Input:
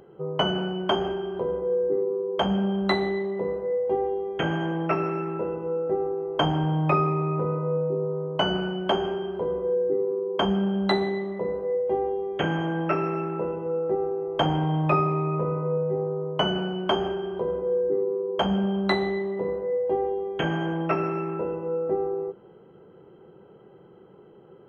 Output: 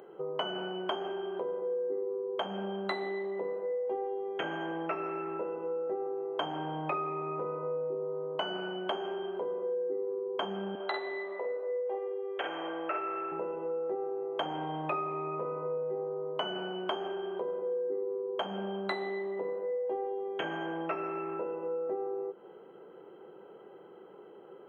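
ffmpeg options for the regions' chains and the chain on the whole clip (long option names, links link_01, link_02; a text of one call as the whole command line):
ffmpeg -i in.wav -filter_complex "[0:a]asettb=1/sr,asplit=3[link_01][link_02][link_03];[link_01]atrim=end=10.754[link_04];[link_02]atrim=start=10.75:end=13.32,asetpts=PTS-STARTPTS,afade=type=in:duration=0.004:curve=qsin,afade=type=out:start_time=2.566:duration=0.004:curve=qsin,highpass=490,lowpass=3700,asplit=2[link_05][link_06];[link_06]adelay=49,volume=-3.5dB[link_07];[link_05][link_07]amix=inputs=2:normalize=0,atrim=end_sample=113337[link_08];[link_03]atrim=start=13.316[link_09];[link_04][link_08]acrossfade=duration=0.004:curve1=hsin:curve2=qsin[link_10];[link_10][link_09]acrossfade=duration=0.004:curve1=qsin:curve2=hsin,highpass=360,equalizer=frequency=5400:width=2.5:gain=-11.5,acompressor=threshold=-38dB:ratio=2.5,volume=2dB" out.wav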